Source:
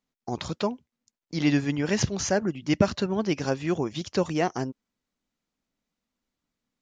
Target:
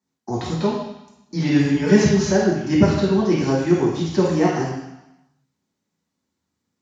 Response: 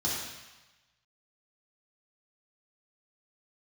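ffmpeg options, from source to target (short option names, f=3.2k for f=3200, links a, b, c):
-filter_complex "[0:a]acrossover=split=4500[a][b];[b]acompressor=threshold=-43dB:ratio=4:attack=1:release=60[c];[a][c]amix=inputs=2:normalize=0,asettb=1/sr,asplit=3[d][e][f];[d]atrim=end=1.744[g];[e]atrim=start=1.74:end=2.31,asetpts=PTS-STARTPTS,afade=t=in:d=0.004:c=qsin,afade=t=out:st=0.566:d=0.004:c=qsin,aecho=1:1:4.7:0.98,atrim=end_sample=25137[h];[f]atrim=start=2.306[i];[g][h]acrossfade=d=0.004:c1=hsin:c2=qsin[j];[j][i]acrossfade=d=0.004:c1=qsin:c2=hsin[k];[1:a]atrim=start_sample=2205,asetrate=52920,aresample=44100[l];[k][l]afir=irnorm=-1:irlink=0,volume=-1.5dB"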